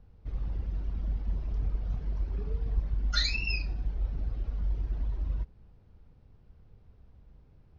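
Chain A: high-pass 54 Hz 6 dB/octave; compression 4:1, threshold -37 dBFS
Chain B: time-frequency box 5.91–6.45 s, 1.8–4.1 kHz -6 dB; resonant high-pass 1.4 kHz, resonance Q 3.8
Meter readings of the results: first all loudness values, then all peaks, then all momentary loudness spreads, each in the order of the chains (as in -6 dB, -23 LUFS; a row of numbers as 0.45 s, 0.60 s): -42.5 LUFS, -28.0 LUFS; -24.0 dBFS, -12.0 dBFS; 23 LU, 11 LU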